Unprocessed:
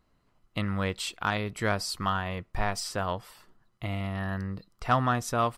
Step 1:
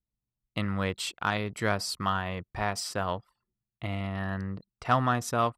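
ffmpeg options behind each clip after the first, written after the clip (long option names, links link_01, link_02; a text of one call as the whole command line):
ffmpeg -i in.wav -af "highpass=73,anlmdn=0.0398" out.wav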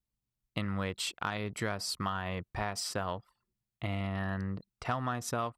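ffmpeg -i in.wav -af "acompressor=threshold=-30dB:ratio=6" out.wav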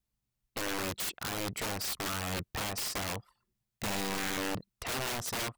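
ffmpeg -i in.wav -af "aeval=exprs='(mod(39.8*val(0)+1,2)-1)/39.8':channel_layout=same,volume=3dB" out.wav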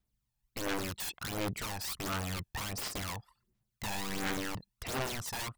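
ffmpeg -i in.wav -filter_complex "[0:a]asplit=2[link_01][link_02];[link_02]alimiter=level_in=13.5dB:limit=-24dB:level=0:latency=1:release=32,volume=-13.5dB,volume=-2.5dB[link_03];[link_01][link_03]amix=inputs=2:normalize=0,aphaser=in_gain=1:out_gain=1:delay=1.2:decay=0.57:speed=1.4:type=sinusoidal,volume=-7dB" out.wav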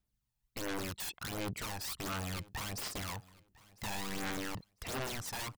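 ffmpeg -i in.wav -af "aeval=exprs='0.0299*(abs(mod(val(0)/0.0299+3,4)-2)-1)':channel_layout=same,aecho=1:1:1001|2002:0.075|0.0165,volume=-2dB" out.wav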